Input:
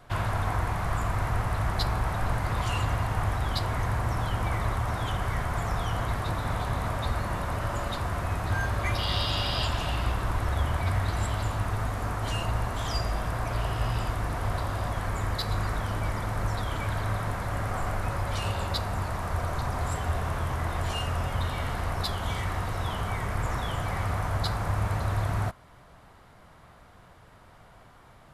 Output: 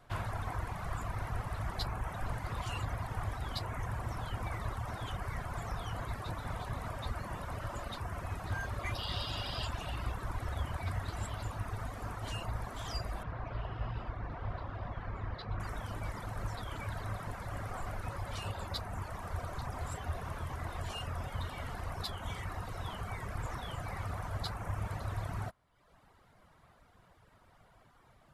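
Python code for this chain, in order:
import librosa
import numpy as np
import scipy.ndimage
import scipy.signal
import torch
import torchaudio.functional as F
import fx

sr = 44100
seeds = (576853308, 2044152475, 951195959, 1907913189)

y = fx.dereverb_blind(x, sr, rt60_s=0.87)
y = fx.air_absorb(y, sr, metres=290.0, at=(13.23, 15.6))
y = F.gain(torch.from_numpy(y), -7.5).numpy()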